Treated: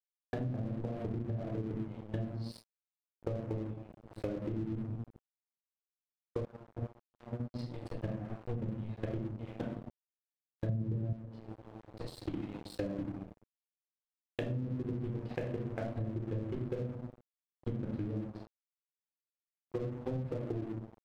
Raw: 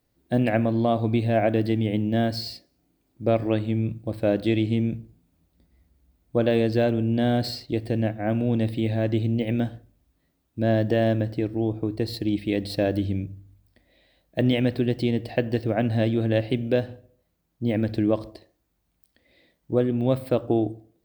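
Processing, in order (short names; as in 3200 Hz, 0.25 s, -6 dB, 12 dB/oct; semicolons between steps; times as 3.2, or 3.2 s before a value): level quantiser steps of 22 dB; treble ducked by the level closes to 310 Hz, closed at -20.5 dBFS; 16.65–17.81 low shelf 400 Hz +4 dB; shoebox room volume 710 m³, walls furnished, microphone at 4 m; 6.45–7.54 gate -17 dBFS, range -15 dB; crossover distortion -35.5 dBFS; 10.69–11.13 bell 130 Hz +14 dB 2.1 oct; compressor 6:1, threshold -32 dBFS, peak gain reduction 24 dB; gain -2.5 dB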